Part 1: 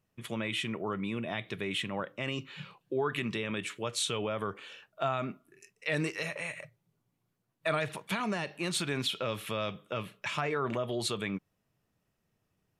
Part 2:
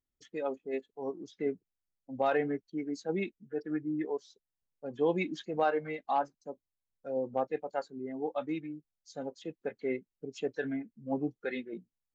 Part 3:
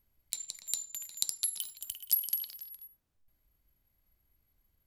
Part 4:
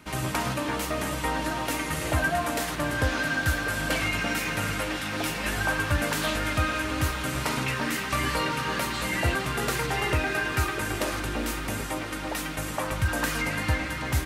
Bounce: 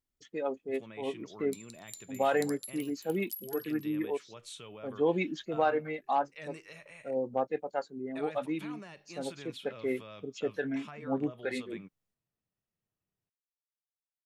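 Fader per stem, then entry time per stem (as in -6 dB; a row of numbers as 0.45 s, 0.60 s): -14.5 dB, +1.0 dB, -12.5 dB, mute; 0.50 s, 0.00 s, 1.20 s, mute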